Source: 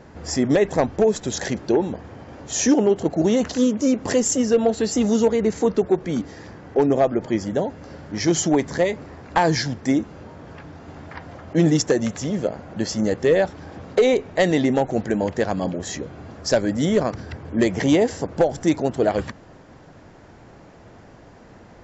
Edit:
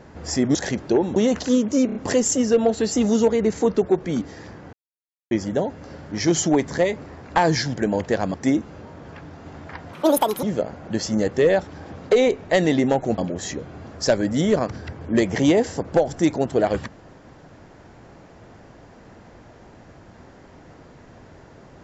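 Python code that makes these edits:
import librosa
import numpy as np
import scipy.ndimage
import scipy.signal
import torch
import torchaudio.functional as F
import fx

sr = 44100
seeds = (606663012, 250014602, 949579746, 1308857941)

y = fx.edit(x, sr, fx.cut(start_s=0.55, length_s=0.79),
    fx.cut(start_s=1.95, length_s=1.3),
    fx.stutter(start_s=3.95, slice_s=0.03, count=4),
    fx.silence(start_s=6.73, length_s=0.58),
    fx.speed_span(start_s=11.35, length_s=0.94, speed=1.88),
    fx.move(start_s=15.04, length_s=0.58, to_s=9.76), tone=tone)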